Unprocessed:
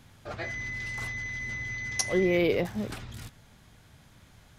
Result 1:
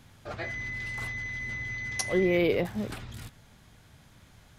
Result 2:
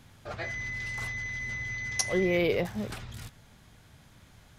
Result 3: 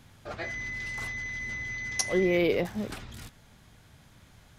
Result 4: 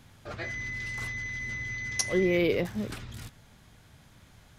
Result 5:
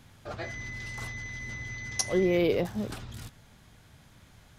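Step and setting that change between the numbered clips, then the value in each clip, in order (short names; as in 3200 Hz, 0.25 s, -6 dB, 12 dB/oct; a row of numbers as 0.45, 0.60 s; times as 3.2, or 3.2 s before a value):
dynamic EQ, frequency: 5900, 290, 110, 760, 2100 Hz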